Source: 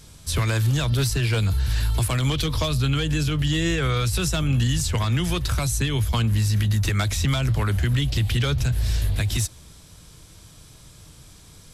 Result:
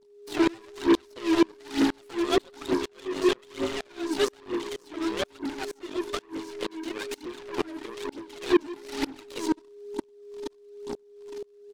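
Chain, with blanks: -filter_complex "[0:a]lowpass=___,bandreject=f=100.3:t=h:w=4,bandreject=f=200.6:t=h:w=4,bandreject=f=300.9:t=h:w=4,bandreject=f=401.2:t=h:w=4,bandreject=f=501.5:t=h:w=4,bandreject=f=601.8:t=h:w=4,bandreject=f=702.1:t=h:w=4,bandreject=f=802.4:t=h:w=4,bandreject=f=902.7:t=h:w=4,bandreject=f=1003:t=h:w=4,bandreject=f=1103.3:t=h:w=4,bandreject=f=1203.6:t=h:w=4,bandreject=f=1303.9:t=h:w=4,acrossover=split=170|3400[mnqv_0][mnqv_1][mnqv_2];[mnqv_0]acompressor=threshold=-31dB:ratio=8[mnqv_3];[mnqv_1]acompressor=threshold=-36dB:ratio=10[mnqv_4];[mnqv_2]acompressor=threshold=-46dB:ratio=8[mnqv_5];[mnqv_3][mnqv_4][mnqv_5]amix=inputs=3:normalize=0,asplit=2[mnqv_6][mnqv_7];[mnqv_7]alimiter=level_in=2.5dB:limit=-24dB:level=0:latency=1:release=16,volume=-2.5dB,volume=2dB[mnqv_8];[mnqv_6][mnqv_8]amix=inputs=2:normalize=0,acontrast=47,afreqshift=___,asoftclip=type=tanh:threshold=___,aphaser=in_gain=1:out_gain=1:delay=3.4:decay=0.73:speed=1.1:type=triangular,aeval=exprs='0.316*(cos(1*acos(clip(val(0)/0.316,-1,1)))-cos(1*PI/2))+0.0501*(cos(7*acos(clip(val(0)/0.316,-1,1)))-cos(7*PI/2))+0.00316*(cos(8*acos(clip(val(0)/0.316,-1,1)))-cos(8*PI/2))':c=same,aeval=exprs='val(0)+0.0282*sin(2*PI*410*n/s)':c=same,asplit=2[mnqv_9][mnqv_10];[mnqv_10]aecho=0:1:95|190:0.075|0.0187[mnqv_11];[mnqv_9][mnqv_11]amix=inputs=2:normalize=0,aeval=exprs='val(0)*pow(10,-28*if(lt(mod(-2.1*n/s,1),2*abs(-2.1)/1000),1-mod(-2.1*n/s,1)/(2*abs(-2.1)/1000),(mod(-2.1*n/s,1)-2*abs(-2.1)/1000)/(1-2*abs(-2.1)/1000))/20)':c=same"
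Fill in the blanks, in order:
4900, 220, -21.5dB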